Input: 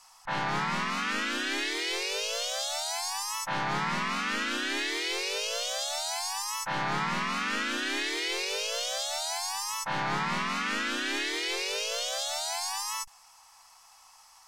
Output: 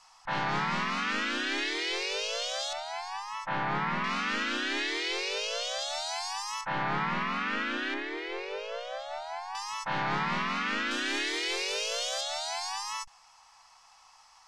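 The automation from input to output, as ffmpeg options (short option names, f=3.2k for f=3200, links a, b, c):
-af "asetnsamples=n=441:p=0,asendcmd='2.73 lowpass f 2600;4.04 lowpass f 5500;6.61 lowpass f 2900;7.94 lowpass f 1700;9.55 lowpass f 4300;10.91 lowpass f 9000;12.21 lowpass f 5500',lowpass=5.7k"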